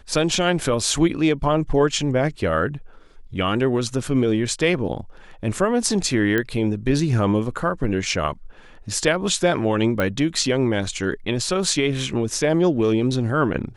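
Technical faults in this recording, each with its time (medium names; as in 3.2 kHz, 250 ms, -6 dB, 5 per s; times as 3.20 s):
6.38 s: pop -9 dBFS
10.00 s: pop -10 dBFS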